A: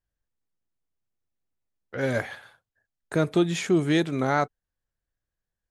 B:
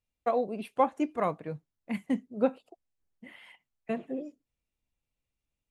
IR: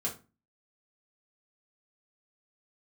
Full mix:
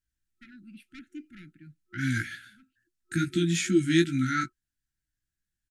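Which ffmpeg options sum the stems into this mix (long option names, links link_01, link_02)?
-filter_complex "[0:a]equalizer=frequency=8000:width_type=o:width=1.3:gain=5,flanger=delay=15:depth=3.1:speed=2.4,volume=2.5dB,asplit=2[link_01][link_02];[1:a]asoftclip=type=tanh:threshold=-24.5dB,adelay=150,volume=-9dB[link_03];[link_02]apad=whole_len=257997[link_04];[link_03][link_04]sidechaincompress=threshold=-41dB:ratio=12:attack=16:release=1190[link_05];[link_01][link_05]amix=inputs=2:normalize=0,afftfilt=real='re*(1-between(b*sr/4096,360,1300))':imag='im*(1-between(b*sr/4096,360,1300))':win_size=4096:overlap=0.75"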